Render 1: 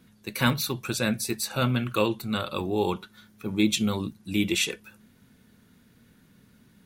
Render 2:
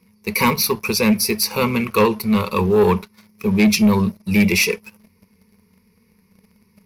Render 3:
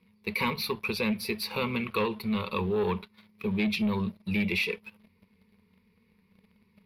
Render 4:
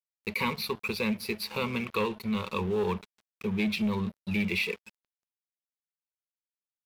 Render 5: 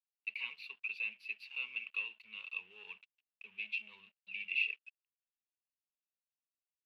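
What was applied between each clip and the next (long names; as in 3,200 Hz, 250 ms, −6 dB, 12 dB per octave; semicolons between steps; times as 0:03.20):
EQ curve with evenly spaced ripples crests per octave 0.85, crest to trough 18 dB; leveller curve on the samples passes 2
high shelf with overshoot 4,700 Hz −9 dB, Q 3; downward compressor 2 to 1, threshold −21 dBFS, peak gain reduction 6 dB; level −8 dB
dead-zone distortion −46 dBFS
resonant band-pass 2,700 Hz, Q 14; level +2 dB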